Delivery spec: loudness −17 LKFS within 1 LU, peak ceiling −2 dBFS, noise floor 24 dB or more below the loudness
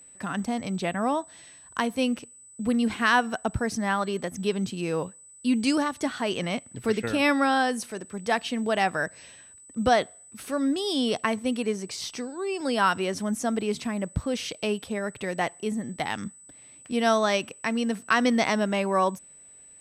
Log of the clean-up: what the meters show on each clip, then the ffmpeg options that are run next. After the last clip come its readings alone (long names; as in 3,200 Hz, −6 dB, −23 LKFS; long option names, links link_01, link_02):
interfering tone 8,000 Hz; level of the tone −48 dBFS; integrated loudness −27.0 LKFS; sample peak −10.0 dBFS; target loudness −17.0 LKFS
→ -af "bandreject=frequency=8000:width=30"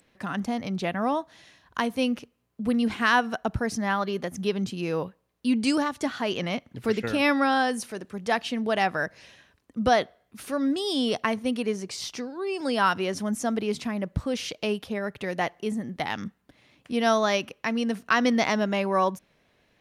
interfering tone none found; integrated loudness −27.0 LKFS; sample peak −10.0 dBFS; target loudness −17.0 LKFS
→ -af "volume=10dB,alimiter=limit=-2dB:level=0:latency=1"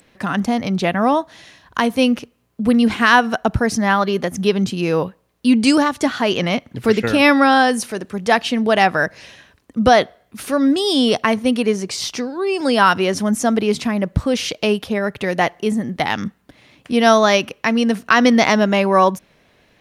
integrated loudness −17.0 LKFS; sample peak −2.0 dBFS; background noise floor −59 dBFS